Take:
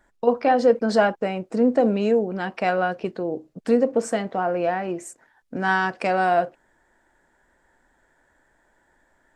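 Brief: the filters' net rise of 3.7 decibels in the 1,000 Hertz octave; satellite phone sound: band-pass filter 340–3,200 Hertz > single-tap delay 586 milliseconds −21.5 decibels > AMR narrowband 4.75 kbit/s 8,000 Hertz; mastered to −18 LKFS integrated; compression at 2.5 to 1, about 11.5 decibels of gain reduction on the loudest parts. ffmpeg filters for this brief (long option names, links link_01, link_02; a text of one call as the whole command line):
ffmpeg -i in.wav -af "equalizer=frequency=1000:width_type=o:gain=6,acompressor=threshold=-29dB:ratio=2.5,highpass=340,lowpass=3200,aecho=1:1:586:0.0841,volume=14dB" -ar 8000 -c:a libopencore_amrnb -b:a 4750 out.amr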